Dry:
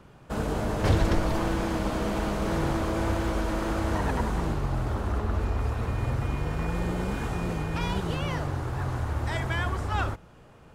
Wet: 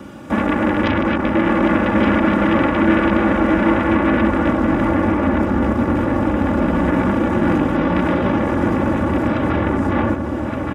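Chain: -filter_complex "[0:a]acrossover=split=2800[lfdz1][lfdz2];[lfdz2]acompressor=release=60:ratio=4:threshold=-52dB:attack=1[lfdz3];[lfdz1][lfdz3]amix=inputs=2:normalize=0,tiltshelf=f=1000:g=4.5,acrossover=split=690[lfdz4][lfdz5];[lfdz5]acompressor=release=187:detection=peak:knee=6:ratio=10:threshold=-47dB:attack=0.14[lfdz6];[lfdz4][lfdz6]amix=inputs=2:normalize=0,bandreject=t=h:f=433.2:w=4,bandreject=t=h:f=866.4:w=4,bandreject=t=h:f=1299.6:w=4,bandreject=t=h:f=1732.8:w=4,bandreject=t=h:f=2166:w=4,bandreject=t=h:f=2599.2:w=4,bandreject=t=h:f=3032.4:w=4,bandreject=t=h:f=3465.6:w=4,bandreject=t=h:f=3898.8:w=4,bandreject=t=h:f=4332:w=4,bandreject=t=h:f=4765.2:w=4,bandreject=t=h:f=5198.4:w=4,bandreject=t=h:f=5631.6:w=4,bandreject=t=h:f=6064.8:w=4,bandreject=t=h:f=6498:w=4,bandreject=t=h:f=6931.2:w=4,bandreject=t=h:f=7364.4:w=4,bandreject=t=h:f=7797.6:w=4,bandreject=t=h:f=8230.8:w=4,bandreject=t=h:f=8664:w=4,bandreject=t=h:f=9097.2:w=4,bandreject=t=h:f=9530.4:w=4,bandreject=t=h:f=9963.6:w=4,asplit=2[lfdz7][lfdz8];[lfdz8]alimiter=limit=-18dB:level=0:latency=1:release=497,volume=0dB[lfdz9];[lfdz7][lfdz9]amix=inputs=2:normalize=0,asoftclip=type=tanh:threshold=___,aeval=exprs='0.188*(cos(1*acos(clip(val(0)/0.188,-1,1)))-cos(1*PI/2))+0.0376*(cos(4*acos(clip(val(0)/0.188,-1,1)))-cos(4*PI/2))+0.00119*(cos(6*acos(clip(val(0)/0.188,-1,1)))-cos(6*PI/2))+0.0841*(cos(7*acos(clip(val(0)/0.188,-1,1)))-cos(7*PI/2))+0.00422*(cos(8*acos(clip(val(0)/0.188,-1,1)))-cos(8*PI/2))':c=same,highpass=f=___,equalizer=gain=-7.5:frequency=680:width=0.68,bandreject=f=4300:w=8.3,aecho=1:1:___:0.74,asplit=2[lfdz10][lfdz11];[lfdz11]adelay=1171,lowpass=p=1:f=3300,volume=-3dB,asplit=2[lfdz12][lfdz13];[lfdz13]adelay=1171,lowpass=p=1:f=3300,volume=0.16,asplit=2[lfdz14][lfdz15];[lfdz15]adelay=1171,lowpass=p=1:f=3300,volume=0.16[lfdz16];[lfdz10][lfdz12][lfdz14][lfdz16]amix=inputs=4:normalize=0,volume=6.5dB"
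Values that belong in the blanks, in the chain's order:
-14.5dB, 160, 3.5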